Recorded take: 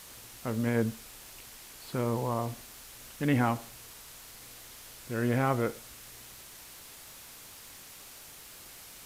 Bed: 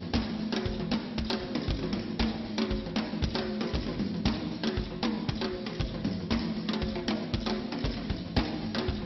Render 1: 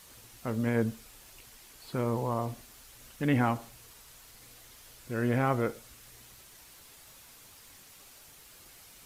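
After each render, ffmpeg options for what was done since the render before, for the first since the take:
-af "afftdn=nr=6:nf=-50"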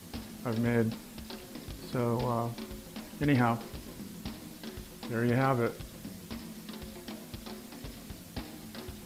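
-filter_complex "[1:a]volume=-12.5dB[a];[0:a][a]amix=inputs=2:normalize=0"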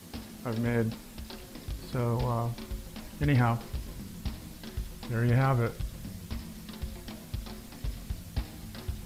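-af "asubboost=boost=5:cutoff=120"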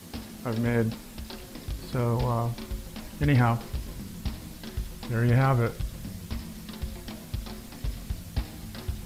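-af "volume=3dB"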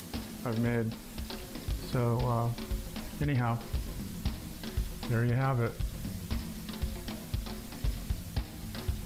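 -af "alimiter=limit=-21dB:level=0:latency=1:release=352,acompressor=mode=upward:threshold=-43dB:ratio=2.5"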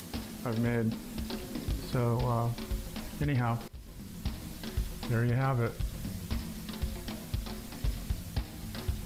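-filter_complex "[0:a]asettb=1/sr,asplit=3[a][b][c];[a]atrim=end=0.834[d];[b]atrim=start=0.83:end=1.81,asetpts=PTS-STARTPTS,afade=t=in:d=0.004:c=qsin,afade=t=out:st=0.976:d=0.004:c=qsin,equalizer=f=250:t=o:w=1.5:g=6[e];[c]atrim=start=1.806[f];[d][e]acrossfade=d=0.004:c1=hsin:c2=qsin[g];[g][f]acrossfade=d=0.004:c1=qsin:c2=hsin,asplit=2[h][i];[h]atrim=end=3.68,asetpts=PTS-STARTPTS,afade=t=out:st=3.676:d=0.004:c=hsin:silence=0.125893[j];[i]atrim=start=3.68,asetpts=PTS-STARTPTS,afade=t=in:d=0.75:silence=0.125893[k];[j][k]concat=n=2:v=0:a=1"

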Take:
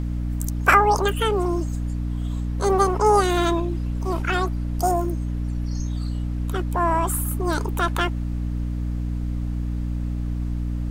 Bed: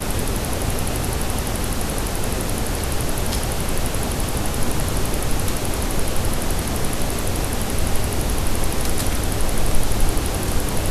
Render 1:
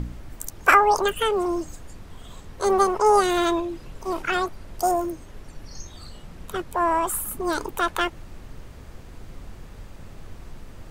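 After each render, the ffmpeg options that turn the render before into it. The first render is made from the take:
-af "bandreject=f=60:t=h:w=4,bandreject=f=120:t=h:w=4,bandreject=f=180:t=h:w=4,bandreject=f=240:t=h:w=4,bandreject=f=300:t=h:w=4"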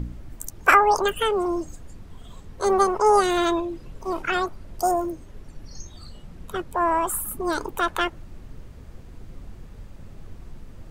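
-af "afftdn=nr=6:nf=-43"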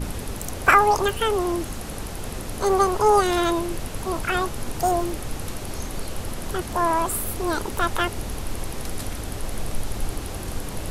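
-filter_complex "[1:a]volume=-9.5dB[a];[0:a][a]amix=inputs=2:normalize=0"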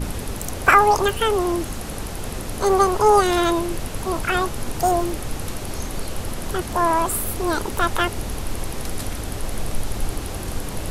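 -af "volume=2.5dB,alimiter=limit=-2dB:level=0:latency=1"

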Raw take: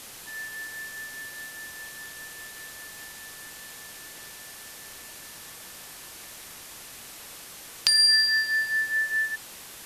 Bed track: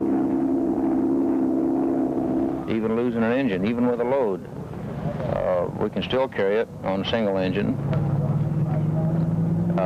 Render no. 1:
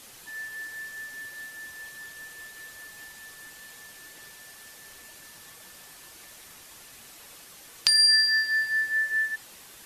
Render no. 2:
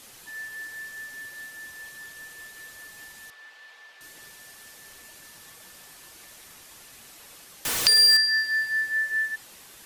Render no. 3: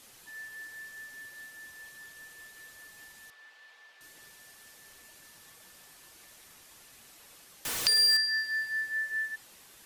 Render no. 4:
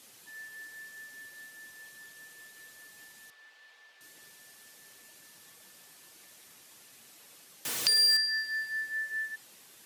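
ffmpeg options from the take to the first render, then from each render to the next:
-af "afftdn=nr=6:nf=-44"
-filter_complex "[0:a]asettb=1/sr,asplit=3[a][b][c];[a]atrim=end=3.304[d];[b]atrim=start=3.3:end=4.01,asetpts=PTS-STARTPTS,afade=t=in:d=0.004:c=qsin,afade=t=out:st=0.706:d=0.004:c=qsin,acrossover=split=460 4400:gain=0.0708 1 0.0794[e][f][g];[e][f][g]amix=inputs=3:normalize=0[h];[c]atrim=start=4.006[i];[d][h]acrossfade=d=0.004:c1=hsin:c2=qsin[j];[j][i]acrossfade=d=0.004:c1=qsin:c2=hsin,asettb=1/sr,asplit=3[k][l][m];[k]atrim=end=7.654[n];[l]atrim=start=7.65:end=8.17,asetpts=PTS-STARTPTS,afade=t=in:d=0.004:c=qsin,afade=t=out:st=0.516:d=0.004:c=qsin,aeval=exprs='val(0)+0.5*0.0841*sgn(val(0))':c=same[o];[m]atrim=start=8.166[p];[n][o]acrossfade=d=0.004:c1=hsin:c2=qsin[q];[q][p]acrossfade=d=0.004:c1=qsin:c2=hsin"
-af "volume=-6.5dB"
-af "highpass=130,equalizer=f=1.1k:t=o:w=1.9:g=-3"

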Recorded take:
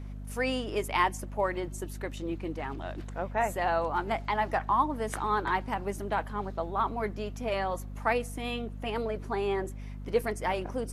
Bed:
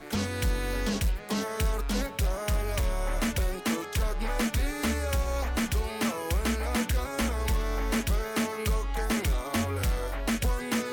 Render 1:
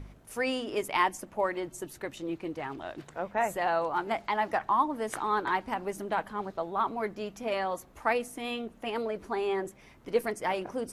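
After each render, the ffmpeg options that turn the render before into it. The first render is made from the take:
-af "bandreject=f=50:t=h:w=4,bandreject=f=100:t=h:w=4,bandreject=f=150:t=h:w=4,bandreject=f=200:t=h:w=4,bandreject=f=250:t=h:w=4"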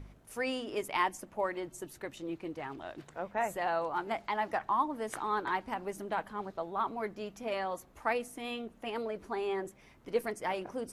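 -af "volume=-4dB"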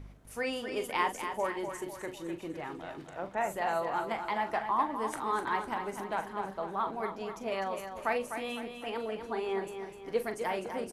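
-filter_complex "[0:a]asplit=2[a][b];[b]adelay=41,volume=-10dB[c];[a][c]amix=inputs=2:normalize=0,asplit=2[d][e];[e]aecho=0:1:252|504|756|1008|1260:0.398|0.183|0.0842|0.0388|0.0178[f];[d][f]amix=inputs=2:normalize=0"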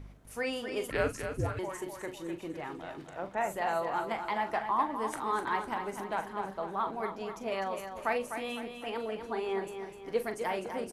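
-filter_complex "[0:a]asettb=1/sr,asplit=3[a][b][c];[a]atrim=end=0.904[d];[b]atrim=start=0.9:end=1.59,asetpts=PTS-STARTPTS,afade=t=in:d=0.004:c=qsin,afade=t=out:st=0.686:d=0.004:c=qsin,afreqshift=-470[e];[c]atrim=start=1.586[f];[d][e]acrossfade=d=0.004:c1=hsin:c2=qsin[g];[g][f]acrossfade=d=0.004:c1=qsin:c2=hsin"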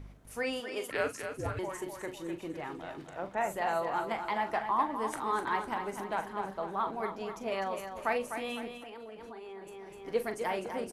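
-filter_complex "[0:a]asettb=1/sr,asplit=3[a][b][c];[a]atrim=end=0.604[d];[b]atrim=start=0.6:end=1.46,asetpts=PTS-STARTPTS,afade=t=in:d=0.004:c=qsin,afade=t=out:st=0.856:d=0.004:c=qsin,highpass=f=400:p=1[e];[c]atrim=start=1.456[f];[d][e]acrossfade=d=0.004:c1=hsin:c2=qsin[g];[g][f]acrossfade=d=0.004:c1=qsin:c2=hsin,asettb=1/sr,asplit=3[h][i][j];[h]atrim=end=8.774[k];[i]atrim=start=8.77:end=10.05,asetpts=PTS-STARTPTS,afade=t=in:d=0.004:c=qsin,afade=t=out:st=1.276:d=0.004:c=qsin,acompressor=threshold=-43dB:ratio=6:attack=3.2:release=140:knee=1:detection=peak[l];[j]atrim=start=10.046[m];[k][l]acrossfade=d=0.004:c1=hsin:c2=qsin[n];[n][m]acrossfade=d=0.004:c1=qsin:c2=hsin"

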